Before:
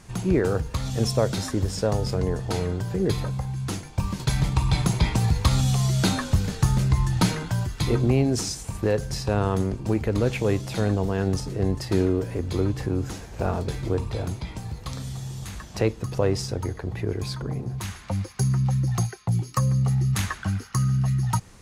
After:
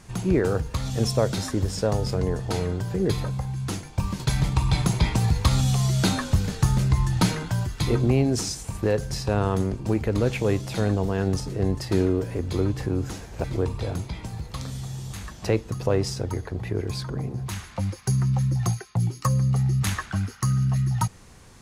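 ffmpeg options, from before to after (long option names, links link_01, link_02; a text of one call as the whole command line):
ffmpeg -i in.wav -filter_complex "[0:a]asplit=2[link_01][link_02];[link_01]atrim=end=13.442[link_03];[link_02]atrim=start=13.758[link_04];[link_03][link_04]acrossfade=duration=0.004:curve1=hsin:curve2=hsin" out.wav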